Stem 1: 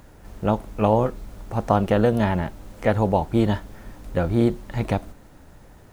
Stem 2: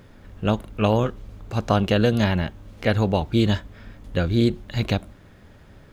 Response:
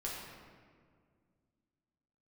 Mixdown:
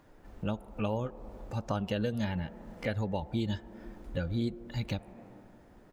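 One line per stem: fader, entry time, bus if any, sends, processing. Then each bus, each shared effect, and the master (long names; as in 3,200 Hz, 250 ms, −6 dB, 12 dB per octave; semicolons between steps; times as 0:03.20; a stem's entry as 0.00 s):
−11.0 dB, 0.00 s, send −3.5 dB, Chebyshev high-pass filter 240 Hz, order 2; high-shelf EQ 4,500 Hz −10.5 dB; downward compressor 2 to 1, threshold −29 dBFS, peak gain reduction 8.5 dB
−1.0 dB, 3.3 ms, no send, spectral dynamics exaggerated over time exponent 1.5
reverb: on, RT60 2.0 s, pre-delay 6 ms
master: downward compressor 2 to 1, threshold −37 dBFS, peak gain reduction 11.5 dB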